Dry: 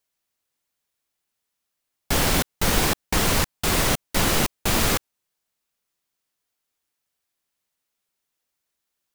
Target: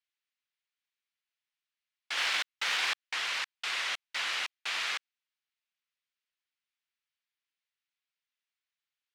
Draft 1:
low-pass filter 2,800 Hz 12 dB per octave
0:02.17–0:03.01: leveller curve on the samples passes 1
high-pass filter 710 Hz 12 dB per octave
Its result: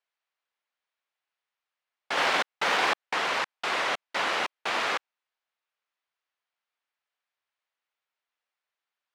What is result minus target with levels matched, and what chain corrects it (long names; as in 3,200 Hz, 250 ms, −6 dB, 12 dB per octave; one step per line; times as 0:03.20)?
1,000 Hz band +7.5 dB
low-pass filter 2,800 Hz 12 dB per octave
0:02.17–0:03.01: leveller curve on the samples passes 1
high-pass filter 2,200 Hz 12 dB per octave